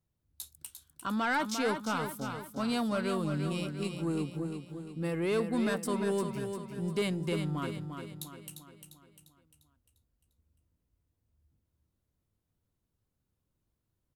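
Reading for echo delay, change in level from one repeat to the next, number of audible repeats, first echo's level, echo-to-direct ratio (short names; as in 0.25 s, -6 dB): 0.349 s, -6.5 dB, 5, -7.0 dB, -6.0 dB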